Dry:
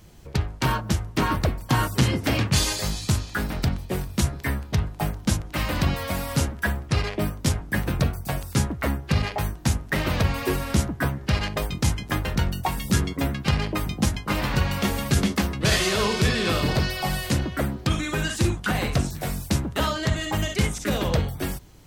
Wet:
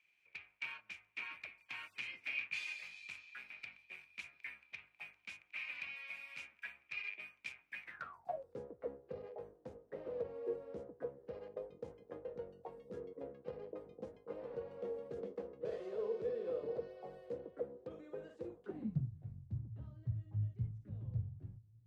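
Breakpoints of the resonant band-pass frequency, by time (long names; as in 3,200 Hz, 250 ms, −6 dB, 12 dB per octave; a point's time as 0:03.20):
resonant band-pass, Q 18
0:07.82 2,400 Hz
0:08.45 480 Hz
0:18.63 480 Hz
0:19.08 110 Hz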